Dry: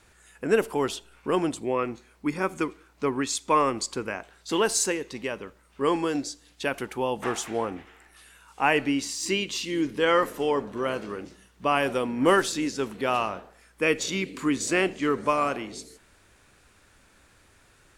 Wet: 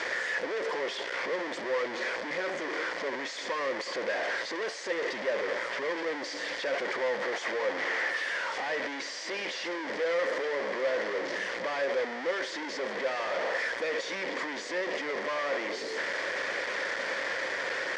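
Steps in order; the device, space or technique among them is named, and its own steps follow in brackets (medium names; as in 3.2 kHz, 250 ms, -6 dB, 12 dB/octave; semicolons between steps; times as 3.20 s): home computer beeper (one-bit comparator; cabinet simulation 530–4500 Hz, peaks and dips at 530 Hz +10 dB, 790 Hz -5 dB, 1.3 kHz -6 dB, 1.9 kHz +8 dB, 2.7 kHz -8 dB, 3.9 kHz -8 dB); trim -1.5 dB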